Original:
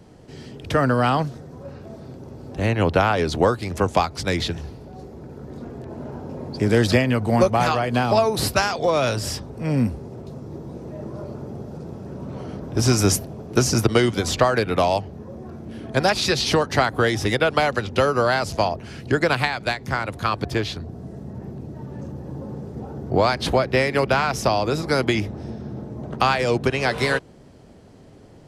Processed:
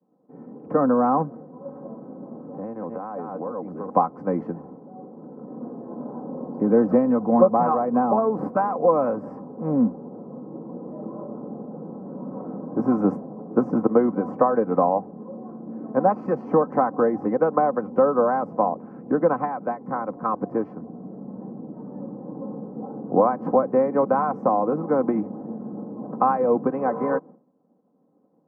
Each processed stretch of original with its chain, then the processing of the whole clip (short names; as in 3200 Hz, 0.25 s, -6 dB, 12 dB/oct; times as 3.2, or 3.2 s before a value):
1.41–3.9 reverse delay 0.351 s, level -4 dB + compressor 10:1, threshold -27 dBFS
whole clip: expander -36 dBFS; elliptic band-pass 160–1100 Hz, stop band 50 dB; comb 3.9 ms, depth 57%